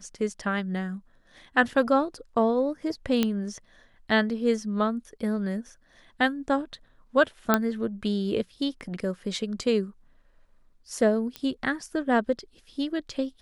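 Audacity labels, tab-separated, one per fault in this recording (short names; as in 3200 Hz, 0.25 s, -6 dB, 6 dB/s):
3.230000	3.230000	pop -10 dBFS
7.540000	7.540000	pop -6 dBFS
11.360000	11.360000	pop -18 dBFS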